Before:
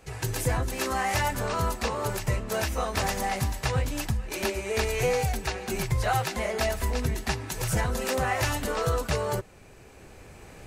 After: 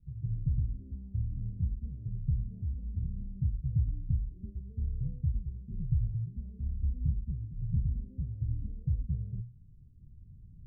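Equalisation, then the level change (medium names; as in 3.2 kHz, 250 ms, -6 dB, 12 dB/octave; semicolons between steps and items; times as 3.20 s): inverse Chebyshev low-pass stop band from 960 Hz, stop band 80 dB; hum notches 60/120 Hz; 0.0 dB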